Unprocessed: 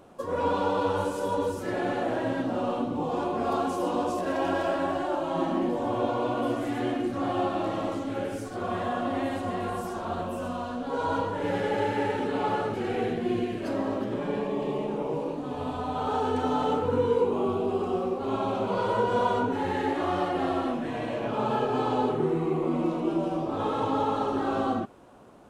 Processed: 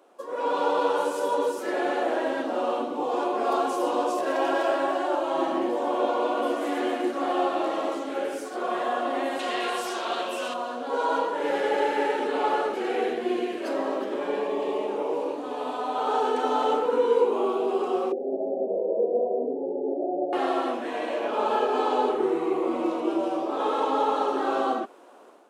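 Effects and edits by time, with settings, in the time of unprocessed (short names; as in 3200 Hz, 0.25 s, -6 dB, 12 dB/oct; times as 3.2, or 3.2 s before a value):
6.34–6.84 echo throw 0.27 s, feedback 50%, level -8 dB
9.39–10.54 weighting filter D
18.12–20.33 steep low-pass 700 Hz 72 dB/oct
whole clip: AGC gain up to 7.5 dB; HPF 320 Hz 24 dB/oct; gain -4 dB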